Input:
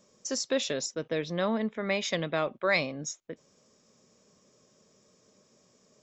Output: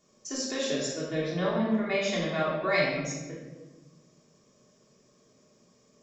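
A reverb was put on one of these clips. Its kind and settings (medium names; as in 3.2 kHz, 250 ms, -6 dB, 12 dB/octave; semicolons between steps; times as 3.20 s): simulated room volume 750 m³, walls mixed, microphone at 3.3 m; trim -6.5 dB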